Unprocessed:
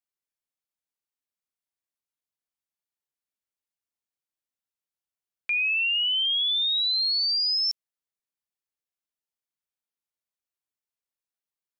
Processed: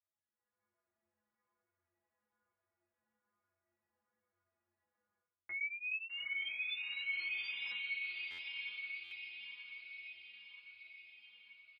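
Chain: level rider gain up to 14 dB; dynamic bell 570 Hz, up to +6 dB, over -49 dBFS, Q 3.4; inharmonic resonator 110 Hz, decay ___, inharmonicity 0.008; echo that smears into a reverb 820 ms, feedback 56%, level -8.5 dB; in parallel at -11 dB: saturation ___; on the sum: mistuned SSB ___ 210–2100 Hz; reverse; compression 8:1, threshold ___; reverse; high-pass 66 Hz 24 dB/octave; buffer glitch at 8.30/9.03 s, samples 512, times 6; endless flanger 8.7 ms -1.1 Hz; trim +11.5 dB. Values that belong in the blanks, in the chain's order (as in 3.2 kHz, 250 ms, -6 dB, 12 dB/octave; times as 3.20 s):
0.39 s, -16 dBFS, -250 Hz, -46 dBFS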